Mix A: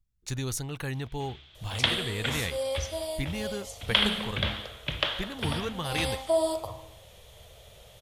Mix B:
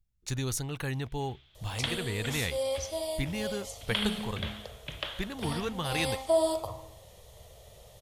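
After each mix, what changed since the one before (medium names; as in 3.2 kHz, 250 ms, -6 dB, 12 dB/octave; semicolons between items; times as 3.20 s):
first sound -8.5 dB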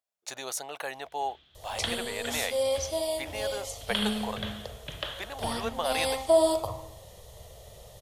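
speech: add resonant high-pass 650 Hz, resonance Q 4.3; first sound: send on; second sound +4.0 dB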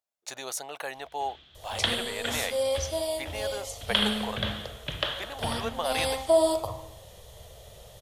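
first sound +6.0 dB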